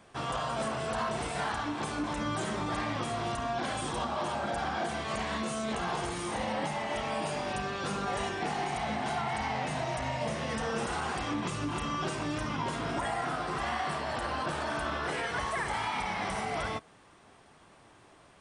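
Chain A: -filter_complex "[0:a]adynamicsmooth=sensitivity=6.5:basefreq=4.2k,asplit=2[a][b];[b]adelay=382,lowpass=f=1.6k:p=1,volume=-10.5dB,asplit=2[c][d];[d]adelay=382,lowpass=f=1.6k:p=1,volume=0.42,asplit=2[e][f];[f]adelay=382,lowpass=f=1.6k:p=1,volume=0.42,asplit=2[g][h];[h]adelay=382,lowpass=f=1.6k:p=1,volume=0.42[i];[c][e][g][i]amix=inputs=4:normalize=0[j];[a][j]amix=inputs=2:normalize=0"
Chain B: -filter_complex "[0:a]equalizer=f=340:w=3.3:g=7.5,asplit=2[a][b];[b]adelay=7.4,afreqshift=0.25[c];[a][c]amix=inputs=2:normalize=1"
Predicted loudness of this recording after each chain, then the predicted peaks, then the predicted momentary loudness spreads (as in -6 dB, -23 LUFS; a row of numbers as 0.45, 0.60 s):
-33.0, -35.0 LUFS; -20.5, -21.5 dBFS; 2, 3 LU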